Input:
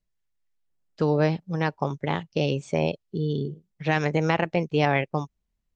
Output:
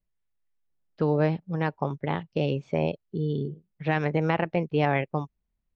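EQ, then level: air absorption 240 m; -1.0 dB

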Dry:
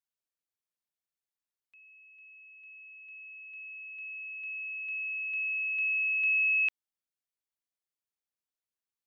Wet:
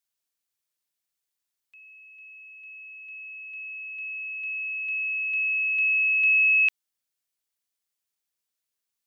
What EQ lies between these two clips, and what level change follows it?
high shelf 2100 Hz +8 dB; +2.0 dB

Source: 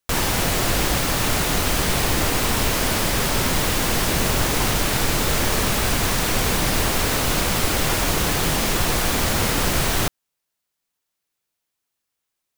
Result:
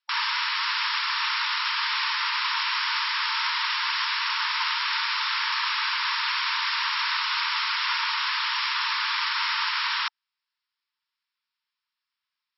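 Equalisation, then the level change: brick-wall FIR band-pass 870–5600 Hz; 0.0 dB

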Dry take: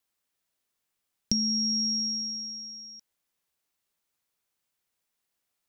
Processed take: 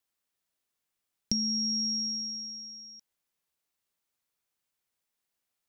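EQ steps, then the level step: dynamic EQ 2100 Hz, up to +8 dB, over -56 dBFS, Q 1.7; -3.0 dB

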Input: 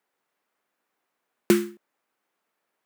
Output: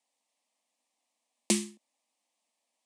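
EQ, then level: elliptic band-pass 220–9100 Hz; high shelf 2700 Hz +11 dB; fixed phaser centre 390 Hz, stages 6; -3.0 dB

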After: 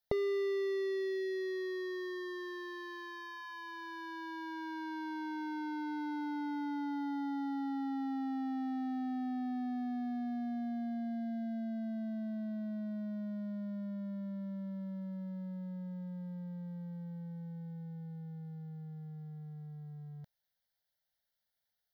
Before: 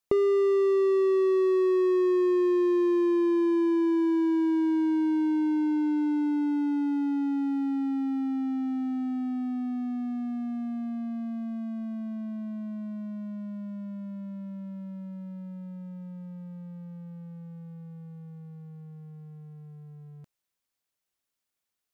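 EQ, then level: fixed phaser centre 1700 Hz, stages 8; +1.5 dB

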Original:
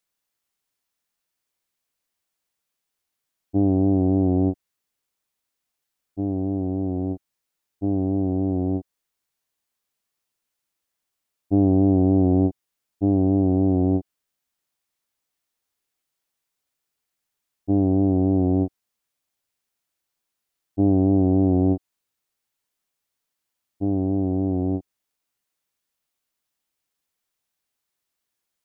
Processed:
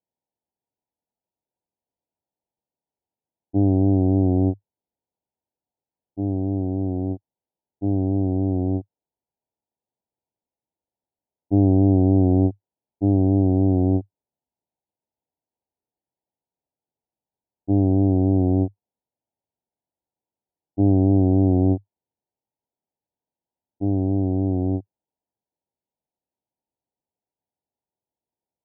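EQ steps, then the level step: HPF 54 Hz; dynamic EQ 100 Hz, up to +5 dB, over -36 dBFS, Q 4.5; brick-wall FIR low-pass 1000 Hz; 0.0 dB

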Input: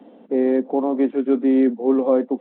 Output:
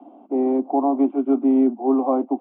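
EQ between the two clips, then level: air absorption 82 m; speaker cabinet 280–2700 Hz, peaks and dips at 300 Hz +6 dB, 430 Hz +5 dB, 730 Hz +9 dB, 1100 Hz +5 dB, 1500 Hz +4 dB; fixed phaser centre 470 Hz, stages 6; 0.0 dB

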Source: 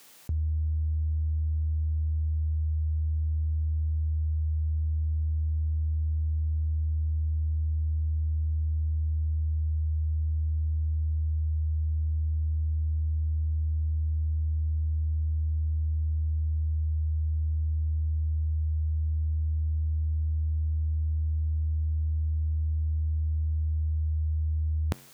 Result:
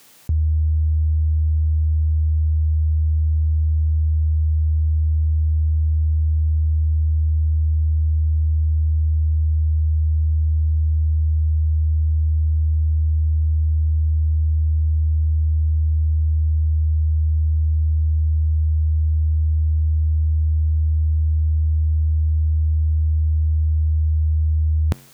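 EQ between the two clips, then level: low shelf 210 Hz +6.5 dB; +4.0 dB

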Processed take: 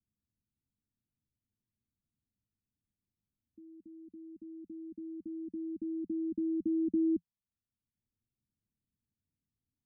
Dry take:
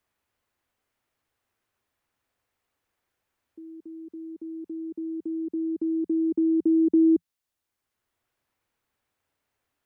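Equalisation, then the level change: ladder low-pass 240 Hz, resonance 40%; +6.0 dB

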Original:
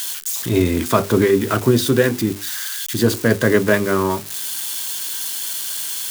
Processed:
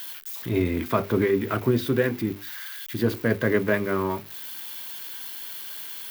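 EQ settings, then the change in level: dynamic EQ 2200 Hz, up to +5 dB, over -43 dBFS, Q 3.6; bell 7600 Hz -14.5 dB 1.4 oct; -7.0 dB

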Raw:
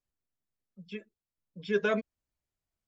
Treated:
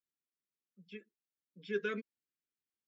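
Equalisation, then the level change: HPF 250 Hz 12 dB/oct; Butterworth band-stop 770 Hz, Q 0.79; high shelf 4500 Hz -10 dB; -4.0 dB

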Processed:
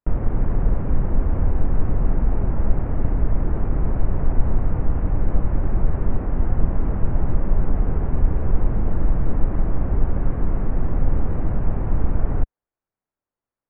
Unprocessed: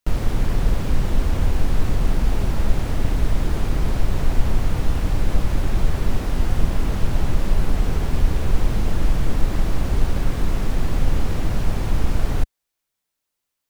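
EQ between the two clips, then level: Gaussian blur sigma 5.5 samples; 0.0 dB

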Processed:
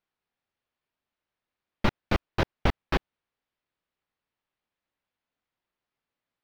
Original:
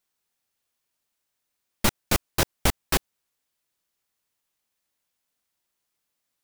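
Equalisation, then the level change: air absorption 300 m; 0.0 dB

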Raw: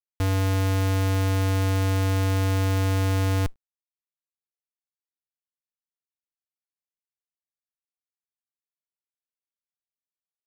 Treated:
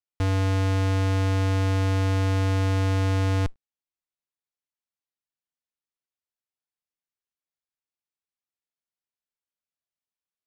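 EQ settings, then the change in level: air absorption 53 m; 0.0 dB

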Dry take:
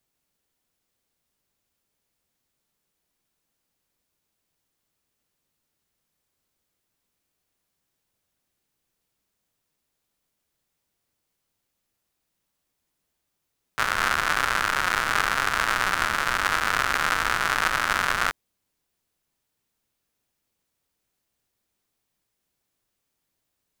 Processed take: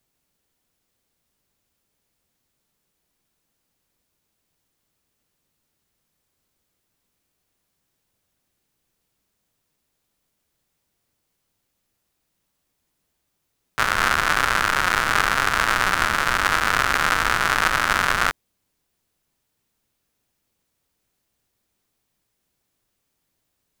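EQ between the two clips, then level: low shelf 340 Hz +3 dB; +3.5 dB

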